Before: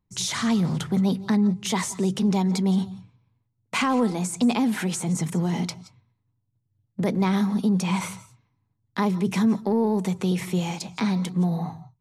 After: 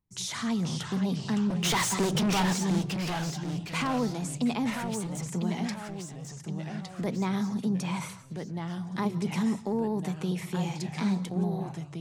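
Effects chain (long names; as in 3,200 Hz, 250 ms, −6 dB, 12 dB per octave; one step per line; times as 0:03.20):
0:01.50–0:02.53: mid-hump overdrive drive 30 dB, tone 6,200 Hz, clips at −13 dBFS
0:04.70–0:05.30: hard clipping −27.5 dBFS, distortion −22 dB
delay with pitch and tempo change per echo 464 ms, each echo −2 semitones, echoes 3, each echo −6 dB
level −7 dB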